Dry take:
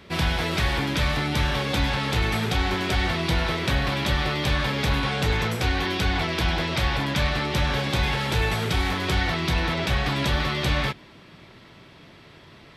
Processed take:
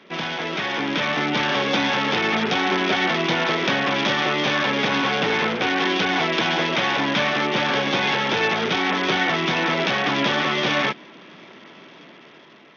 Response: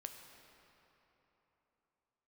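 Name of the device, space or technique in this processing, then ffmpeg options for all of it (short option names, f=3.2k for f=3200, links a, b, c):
Bluetooth headset: -af "highpass=f=200:w=0.5412,highpass=f=200:w=1.3066,dynaudnorm=f=260:g=7:m=6dB,aresample=8000,aresample=44100" -ar 48000 -c:a sbc -b:a 64k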